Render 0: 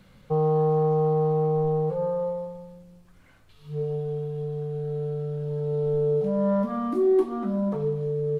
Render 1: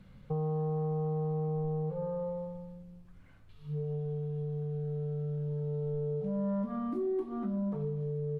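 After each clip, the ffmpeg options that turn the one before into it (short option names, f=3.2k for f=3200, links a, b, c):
-af "bass=f=250:g=8,treble=f=4k:g=-6,acompressor=threshold=-27dB:ratio=2.5,volume=-6.5dB"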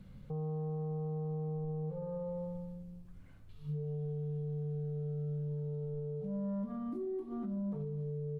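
-af "alimiter=level_in=9.5dB:limit=-24dB:level=0:latency=1:release=216,volume=-9.5dB,equalizer=f=1.6k:w=0.36:g=-6.5,volume=2.5dB"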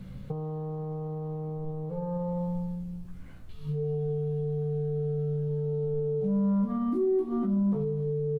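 -filter_complex "[0:a]asplit=2[a][b];[b]adelay=16,volume=-5dB[c];[a][c]amix=inputs=2:normalize=0,volume=9dB"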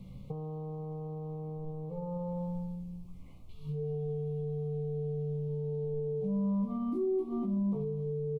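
-af "asuperstop=centerf=1600:order=8:qfactor=1.8,volume=-5dB"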